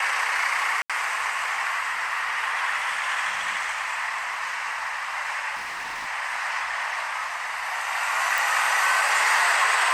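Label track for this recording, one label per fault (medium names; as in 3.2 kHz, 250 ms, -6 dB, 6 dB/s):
0.820000	0.900000	dropout 76 ms
5.550000	6.080000	clipped -29 dBFS
8.380000	8.380000	pop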